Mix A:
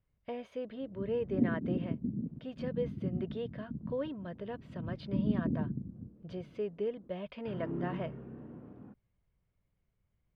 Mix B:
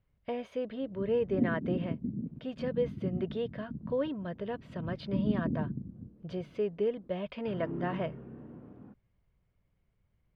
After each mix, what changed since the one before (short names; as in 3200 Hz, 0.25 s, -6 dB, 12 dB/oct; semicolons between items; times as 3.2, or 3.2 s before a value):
speech +4.5 dB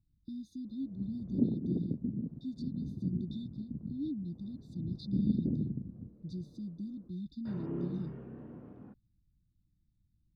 speech: add brick-wall FIR band-stop 350–3500 Hz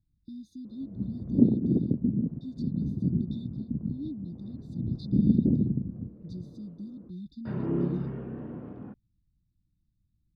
background +9.0 dB